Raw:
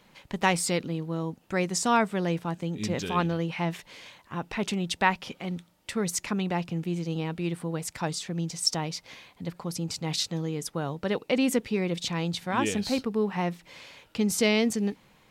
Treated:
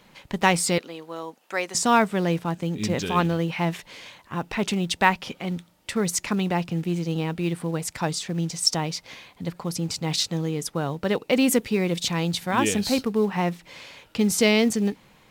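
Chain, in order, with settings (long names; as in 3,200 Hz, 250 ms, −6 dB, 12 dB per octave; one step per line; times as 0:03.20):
0:00.78–0:01.75: high-pass filter 560 Hz 12 dB per octave
0:11.37–0:13.07: high-shelf EQ 10,000 Hz +10.5 dB
in parallel at −8.5 dB: floating-point word with a short mantissa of 2 bits
on the sum: level +1.5 dB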